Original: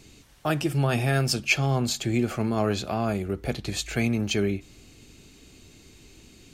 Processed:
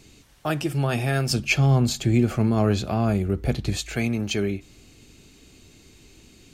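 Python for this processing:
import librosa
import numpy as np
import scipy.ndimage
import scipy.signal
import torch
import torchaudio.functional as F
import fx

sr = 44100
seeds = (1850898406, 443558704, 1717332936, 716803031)

y = fx.low_shelf(x, sr, hz=240.0, db=9.5, at=(1.3, 3.77))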